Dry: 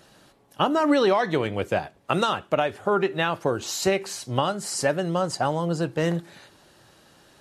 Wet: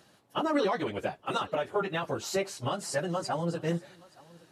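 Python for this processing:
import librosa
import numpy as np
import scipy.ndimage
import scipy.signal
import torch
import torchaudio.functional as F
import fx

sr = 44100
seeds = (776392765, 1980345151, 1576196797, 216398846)

p1 = scipy.signal.sosfilt(scipy.signal.butter(2, 79.0, 'highpass', fs=sr, output='sos'), x)
p2 = fx.stretch_vocoder_free(p1, sr, factor=0.61)
p3 = p2 + fx.echo_single(p2, sr, ms=872, db=-24.0, dry=0)
y = F.gain(torch.from_numpy(p3), -3.5).numpy()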